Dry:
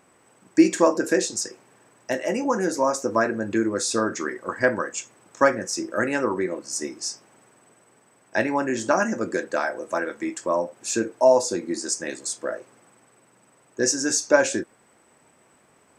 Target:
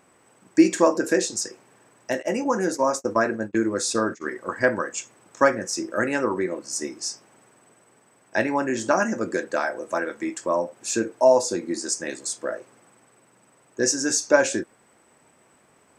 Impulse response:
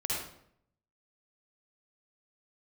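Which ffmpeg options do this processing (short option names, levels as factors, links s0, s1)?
-filter_complex "[0:a]asplit=3[s0][s1][s2];[s0]afade=t=out:st=2.21:d=0.02[s3];[s1]agate=range=0.0282:threshold=0.0447:ratio=16:detection=peak,afade=t=in:st=2.21:d=0.02,afade=t=out:st=4.3:d=0.02[s4];[s2]afade=t=in:st=4.3:d=0.02[s5];[s3][s4][s5]amix=inputs=3:normalize=0"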